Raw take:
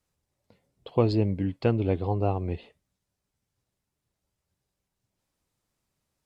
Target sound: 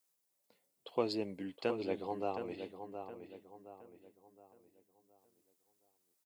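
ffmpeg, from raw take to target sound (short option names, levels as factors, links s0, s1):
-filter_complex "[0:a]highpass=200,aemphasis=mode=production:type=bsi,asplit=2[s0][s1];[s1]adelay=718,lowpass=f=2500:p=1,volume=0.398,asplit=2[s2][s3];[s3]adelay=718,lowpass=f=2500:p=1,volume=0.4,asplit=2[s4][s5];[s5]adelay=718,lowpass=f=2500:p=1,volume=0.4,asplit=2[s6][s7];[s7]adelay=718,lowpass=f=2500:p=1,volume=0.4,asplit=2[s8][s9];[s9]adelay=718,lowpass=f=2500:p=1,volume=0.4[s10];[s2][s4][s6][s8][s10]amix=inputs=5:normalize=0[s11];[s0][s11]amix=inputs=2:normalize=0,volume=0.422"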